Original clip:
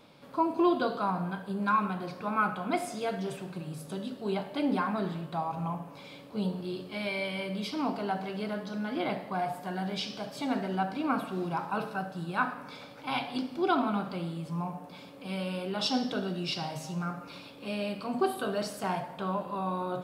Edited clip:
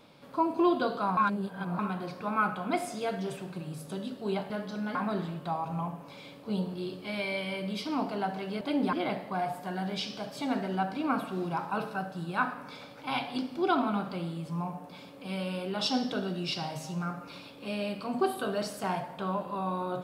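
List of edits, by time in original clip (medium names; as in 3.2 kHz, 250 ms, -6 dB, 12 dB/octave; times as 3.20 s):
1.17–1.79 s: reverse
4.50–4.82 s: swap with 8.48–8.93 s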